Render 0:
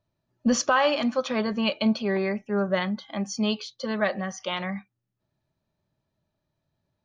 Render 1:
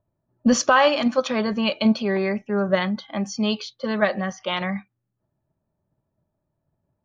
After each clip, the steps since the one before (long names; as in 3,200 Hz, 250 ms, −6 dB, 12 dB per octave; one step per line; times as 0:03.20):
low-pass that shuts in the quiet parts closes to 1,100 Hz, open at −23.5 dBFS
in parallel at 0 dB: output level in coarse steps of 11 dB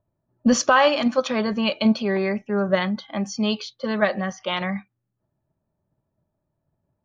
no processing that can be heard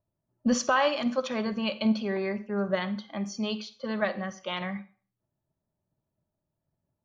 convolution reverb RT60 0.40 s, pre-delay 45 ms, DRR 13.5 dB
level −7.5 dB